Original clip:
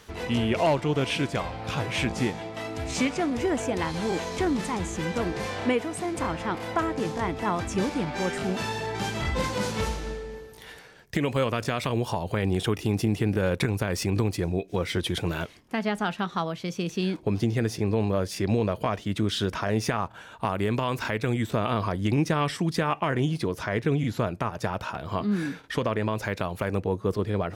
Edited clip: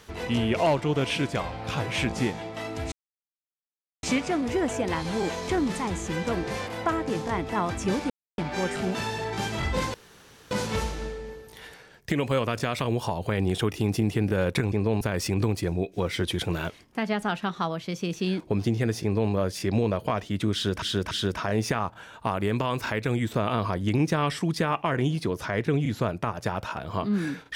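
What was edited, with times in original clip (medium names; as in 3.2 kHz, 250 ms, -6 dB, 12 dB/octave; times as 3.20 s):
2.92 s: insert silence 1.11 s
5.56–6.57 s: delete
8.00 s: insert silence 0.28 s
9.56 s: insert room tone 0.57 s
17.79–18.08 s: copy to 13.77 s
19.29–19.58 s: loop, 3 plays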